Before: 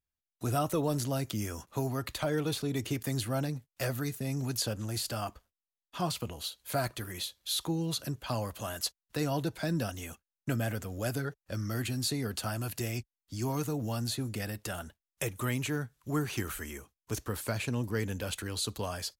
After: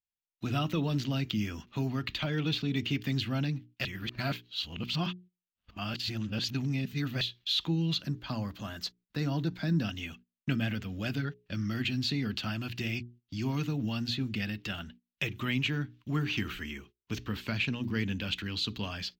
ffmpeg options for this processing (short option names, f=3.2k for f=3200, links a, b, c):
-filter_complex "[0:a]asettb=1/sr,asplit=3[a][b][c];[a]atrim=end=8.024[d];[b]atrim=start=8.02:end=9.84,asetpts=PTS-STARTPTS,afade=t=in:d=0.004:c=qsin,afade=t=out:st=1.816:d=0.004:c=qsin,equalizer=f=2.8k:w=1.9:g=-10.5[e];[c]atrim=start=9.836[f];[d][e]acrossfade=d=0.004:c1=hsin:c2=qsin[g];[g][f]acrossfade=d=0.004:c1=qsin:c2=hsin,asplit=3[h][i][j];[h]atrim=end=3.852[k];[i]atrim=start=3.848:end=7.212,asetpts=PTS-STARTPTS,areverse[l];[j]atrim=start=7.208[m];[k][l]acrossfade=d=0.004:c1=hsin:c2=hsin[n];[n][m]acrossfade=d=0.004:c1=hsin:c2=hsin,bandreject=f=60:t=h:w=6,bandreject=f=120:t=h:w=6,bandreject=f=180:t=h:w=6,bandreject=f=240:t=h:w=6,bandreject=f=300:t=h:w=6,bandreject=f=360:t=h:w=6,bandreject=f=420:t=h:w=6,agate=range=-13dB:threshold=-55dB:ratio=16:detection=peak,firequalizer=gain_entry='entry(110,0);entry(190,7);entry(490,-8);entry(2800,10);entry(10000,-28);entry(15000,-7)':delay=0.05:min_phase=1"